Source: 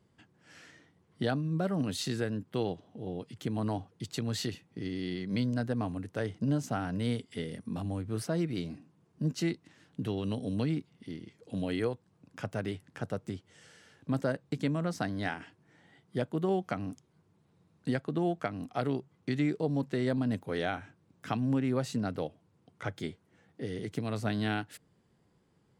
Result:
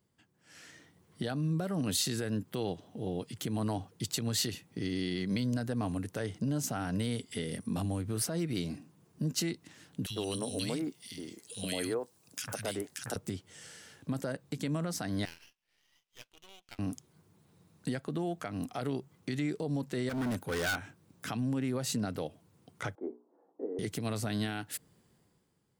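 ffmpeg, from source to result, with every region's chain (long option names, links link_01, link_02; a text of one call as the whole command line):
ffmpeg -i in.wav -filter_complex "[0:a]asettb=1/sr,asplit=3[link_01][link_02][link_03];[link_01]atrim=end=10.064[link_04];[link_02]atrim=start=10.06:end=13.16,asetpts=PTS-STARTPTS,afade=type=in:duration=0.004:curve=qsin,afade=type=out:start_time=3.096:duration=0.004:curve=qsin,bass=frequency=250:gain=-8,treble=frequency=4000:gain=9,acrossover=split=180|1700[link_05][link_06][link_07];[link_05]adelay=40[link_08];[link_06]adelay=100[link_09];[link_08][link_09][link_07]amix=inputs=3:normalize=0,atrim=end_sample=136710[link_10];[link_03]atrim=start=13.156[link_11];[link_04][link_10]acrossfade=duration=0.004:curve1=hsin:curve2=qsin[link_12];[link_12][link_11]acrossfade=duration=0.004:curve1=qsin:curve2=hsin,asettb=1/sr,asplit=3[link_13][link_14][link_15];[link_13]atrim=end=15.254[link_16];[link_14]atrim=start=15.25:end=16.79,asetpts=PTS-STARTPTS,afade=type=in:duration=0.004:curve=qsin,afade=type=out:start_time=1.536:duration=0.004:curve=qsin,bandpass=frequency=2800:width_type=q:width=4.5,aeval=exprs='max(val(0),0)':channel_layout=same[link_17];[link_15]atrim=start=16.786[link_18];[link_16][link_17]acrossfade=duration=0.004:curve1=hsin:curve2=qsin[link_19];[link_19][link_18]acrossfade=duration=0.004:curve1=qsin:curve2=hsin,asettb=1/sr,asplit=3[link_20][link_21][link_22];[link_20]atrim=end=20.094[link_23];[link_21]atrim=start=20.09:end=20.76,asetpts=PTS-STARTPTS,afade=type=in:duration=0.004:curve=qsin,afade=type=out:start_time=0.666:duration=0.004:curve=qsin,equalizer=frequency=1500:width=7.9:gain=11.5,asoftclip=type=hard:threshold=-33dB[link_24];[link_22]atrim=start=20.756[link_25];[link_23][link_24]acrossfade=duration=0.004:curve1=hsin:curve2=qsin[link_26];[link_26][link_25]acrossfade=duration=0.004:curve1=qsin:curve2=hsin,asettb=1/sr,asplit=3[link_27][link_28][link_29];[link_27]atrim=end=22.954[link_30];[link_28]atrim=start=22.95:end=23.79,asetpts=PTS-STARTPTS,afade=type=in:duration=0.004:curve=qsin,afade=type=out:start_time=0.836:duration=0.004:curve=qsin,asuperpass=centerf=540:order=8:qfactor=0.72,bandreject=frequency=60:width_type=h:width=6,bandreject=frequency=120:width_type=h:width=6,bandreject=frequency=180:width_type=h:width=6,bandreject=frequency=240:width_type=h:width=6,bandreject=frequency=300:width_type=h:width=6,bandreject=frequency=360:width_type=h:width=6,bandreject=frequency=420:width_type=h:width=6[link_31];[link_29]atrim=start=23.786[link_32];[link_30][link_31]acrossfade=duration=0.004:curve1=hsin:curve2=qsin[link_33];[link_33][link_32]acrossfade=duration=0.004:curve1=qsin:curve2=hsin,alimiter=level_in=4dB:limit=-24dB:level=0:latency=1:release=113,volume=-4dB,aemphasis=mode=production:type=50kf,dynaudnorm=framelen=120:gausssize=11:maxgain=11.5dB,volume=-8.5dB" out.wav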